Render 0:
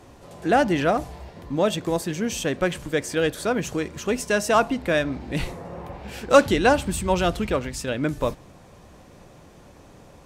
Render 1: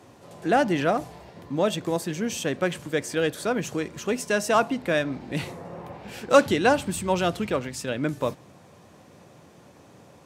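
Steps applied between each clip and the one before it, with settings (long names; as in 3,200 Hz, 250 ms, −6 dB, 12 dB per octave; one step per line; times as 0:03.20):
high-pass filter 95 Hz 24 dB per octave
level −2 dB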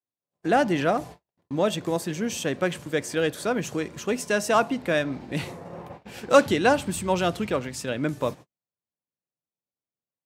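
noise gate −39 dBFS, range −50 dB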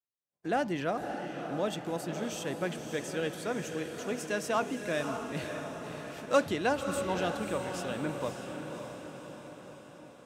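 feedback delay with all-pass diffusion 575 ms, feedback 59%, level −6.5 dB
level −9 dB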